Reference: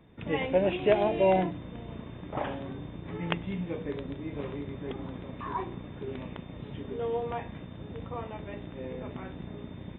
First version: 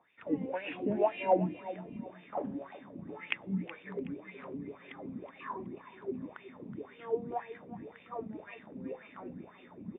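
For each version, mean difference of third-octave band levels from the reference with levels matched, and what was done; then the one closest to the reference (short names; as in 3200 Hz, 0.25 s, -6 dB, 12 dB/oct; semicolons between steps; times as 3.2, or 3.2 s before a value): 7.0 dB: wah 1.9 Hz 200–2600 Hz, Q 5.3; feedback echo 0.372 s, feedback 32%, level -14.5 dB; gain +6 dB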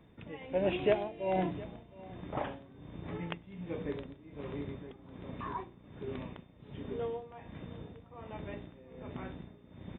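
3.5 dB: tremolo 1.3 Hz, depth 83%; on a send: echo 0.712 s -19.5 dB; on the sum: gain -2 dB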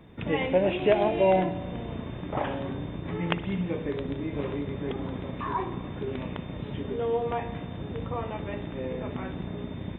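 2.0 dB: in parallel at +0.5 dB: compressor, threshold -36 dBFS, peak gain reduction 17 dB; on the sum: spring tank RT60 1.5 s, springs 56 ms, chirp 35 ms, DRR 12.5 dB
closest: third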